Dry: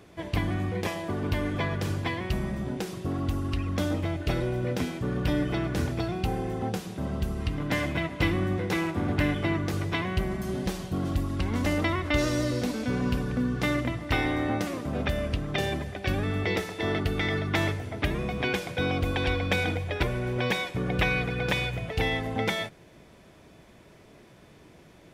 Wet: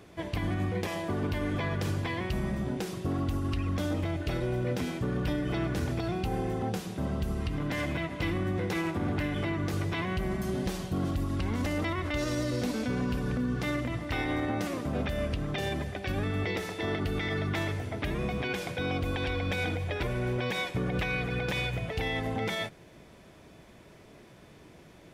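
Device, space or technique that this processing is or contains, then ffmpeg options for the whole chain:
clipper into limiter: -af "asoftclip=type=hard:threshold=0.188,alimiter=limit=0.0794:level=0:latency=1:release=66"

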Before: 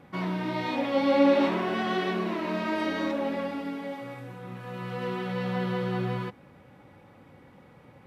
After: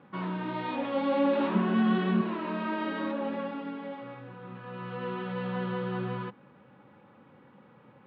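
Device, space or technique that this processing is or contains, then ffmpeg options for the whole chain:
overdrive pedal into a guitar cabinet: -filter_complex "[0:a]asettb=1/sr,asplit=3[s0][s1][s2];[s0]atrim=end=1.544[s3];[s1]atrim=start=1.54:end=2.21,asetpts=PTS-STARTPTS,afade=t=in:d=0.004:c=qsin,afade=t=out:st=0.666:d=0.004:c=qsin,equalizer=f=200:w=3:g=14[s4];[s2]atrim=start=2.206[s5];[s3][s4]acrossfade=d=0.004:c1=hsin:c2=qsin[s6];[s6][s5]acrossfade=d=0.004:c1=qsin:c2=hsin,asplit=2[s7][s8];[s8]highpass=f=720:p=1,volume=3.98,asoftclip=type=tanh:threshold=0.282[s9];[s7][s9]amix=inputs=2:normalize=0,lowpass=f=2100:p=1,volume=0.501,highpass=100,equalizer=f=130:t=q:w=4:g=6,equalizer=f=210:t=q:w=4:g=8,equalizer=f=690:t=q:w=4:g=-7,equalizer=f=2100:t=q:w=4:g=-8,lowpass=f=3600:w=0.5412,lowpass=f=3600:w=1.3066,volume=0.562"

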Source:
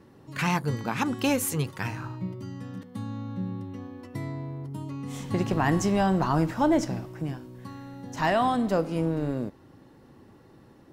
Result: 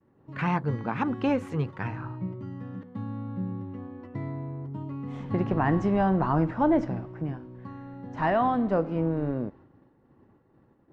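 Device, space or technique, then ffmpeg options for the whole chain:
hearing-loss simulation: -af "lowpass=1800,agate=range=0.0224:threshold=0.00501:ratio=3:detection=peak"

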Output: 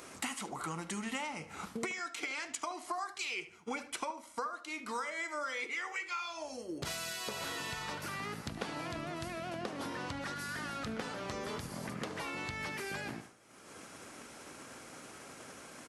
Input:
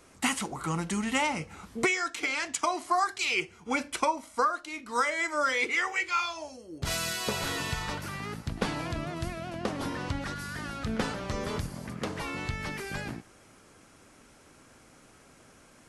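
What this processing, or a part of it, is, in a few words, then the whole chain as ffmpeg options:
upward and downward compression: -filter_complex "[0:a]highpass=f=240:p=1,agate=range=0.0224:threshold=0.00631:ratio=3:detection=peak,acompressor=mode=upward:threshold=0.0158:ratio=2.5,acompressor=threshold=0.00708:ratio=5,asplit=2[s0][s1];[s1]adelay=74,lowpass=f=3300:p=1,volume=0.224,asplit=2[s2][s3];[s3]adelay=74,lowpass=f=3300:p=1,volume=0.36,asplit=2[s4][s5];[s5]adelay=74,lowpass=f=3300:p=1,volume=0.36,asplit=2[s6][s7];[s7]adelay=74,lowpass=f=3300:p=1,volume=0.36[s8];[s0][s2][s4][s6][s8]amix=inputs=5:normalize=0,volume=1.78"

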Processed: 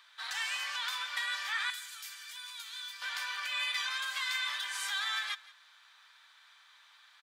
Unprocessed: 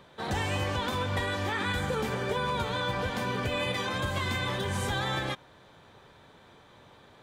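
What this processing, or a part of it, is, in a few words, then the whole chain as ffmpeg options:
headphones lying on a table: -filter_complex "[0:a]asettb=1/sr,asplit=3[s0][s1][s2];[s0]atrim=end=1.704[s3];[s1]atrim=start=1.7:end=3.02,asetpts=PTS-STARTPTS,afade=t=in:d=0.004:c=qsin,afade=t=out:st=1.316:d=0.004:c=qsin,aderivative[s4];[s2]atrim=start=3.016[s5];[s3][s4]acrossfade=d=0.004:c1=hsin:c2=qsin[s6];[s6][s5]acrossfade=d=0.004:c1=qsin:c2=hsin,highpass=f=1300:w=0.5412,highpass=f=1300:w=1.3066,equalizer=f=4800:t=o:w=0.5:g=5,aecho=1:1:171:0.1"

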